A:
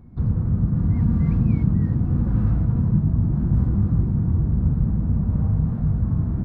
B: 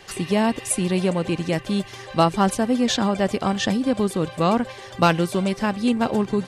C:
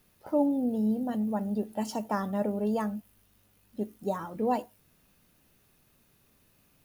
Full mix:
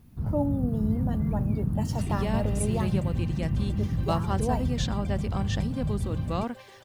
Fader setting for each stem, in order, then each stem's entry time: -8.5, -11.5, -2.0 dB; 0.00, 1.90, 0.00 s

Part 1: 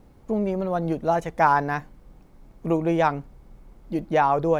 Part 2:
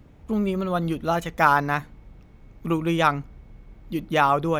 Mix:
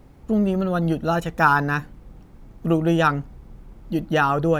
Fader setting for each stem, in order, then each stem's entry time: +2.0, -2.5 dB; 0.00, 0.00 s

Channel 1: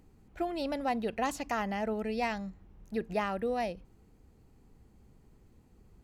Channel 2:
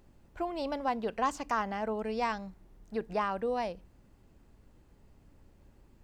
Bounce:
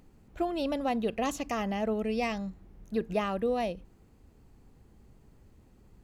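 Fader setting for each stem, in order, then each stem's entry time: +1.0, -4.0 dB; 0.00, 0.00 s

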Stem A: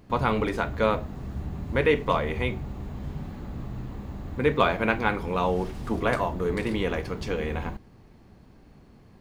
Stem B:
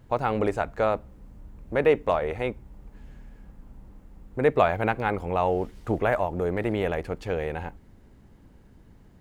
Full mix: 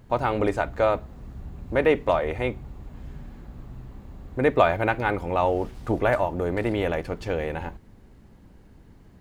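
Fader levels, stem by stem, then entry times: -8.0, +1.5 dB; 0.00, 0.00 s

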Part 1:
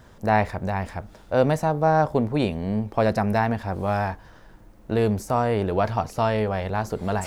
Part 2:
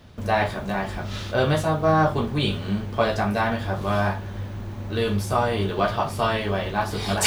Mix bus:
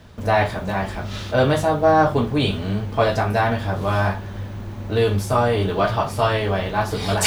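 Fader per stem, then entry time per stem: -2.0, +1.5 dB; 0.00, 0.00 s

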